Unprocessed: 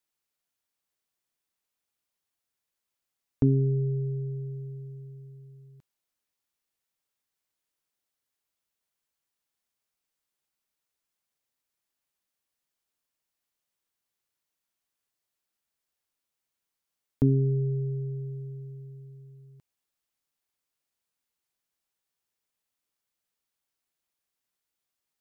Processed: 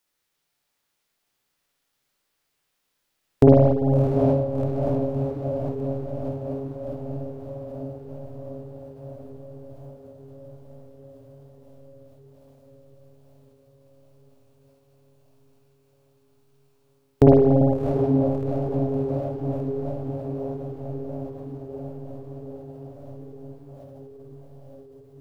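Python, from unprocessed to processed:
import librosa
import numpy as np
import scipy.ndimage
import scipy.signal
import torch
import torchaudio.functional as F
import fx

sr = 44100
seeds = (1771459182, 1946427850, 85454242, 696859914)

p1 = fx.tracing_dist(x, sr, depth_ms=0.14)
p2 = fx.wow_flutter(p1, sr, seeds[0], rate_hz=2.1, depth_cents=28.0)
p3 = p2 + fx.echo_diffused(p2, sr, ms=696, feedback_pct=73, wet_db=-7.0, dry=0)
p4 = fx.rev_spring(p3, sr, rt60_s=1.2, pass_ms=(49, 56), chirp_ms=25, drr_db=-2.0)
p5 = fx.formant_shift(p4, sr, semitones=6)
y = F.gain(torch.from_numpy(p5), 8.0).numpy()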